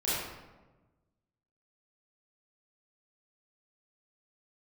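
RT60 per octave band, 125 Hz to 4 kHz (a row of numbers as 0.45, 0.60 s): 1.7, 1.5, 1.3, 1.1, 0.90, 0.70 s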